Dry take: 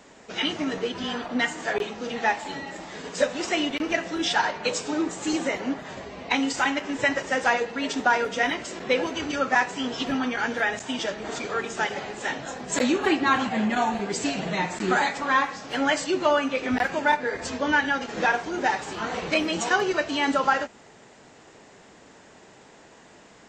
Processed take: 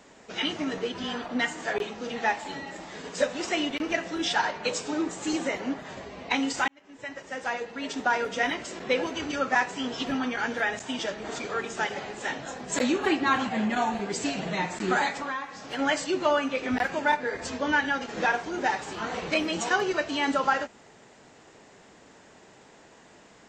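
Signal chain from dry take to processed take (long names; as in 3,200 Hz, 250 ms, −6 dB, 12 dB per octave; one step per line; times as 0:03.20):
0:06.68–0:08.36: fade in
0:15.20–0:15.79: downward compressor 5 to 1, threshold −28 dBFS, peak gain reduction 11 dB
level −2.5 dB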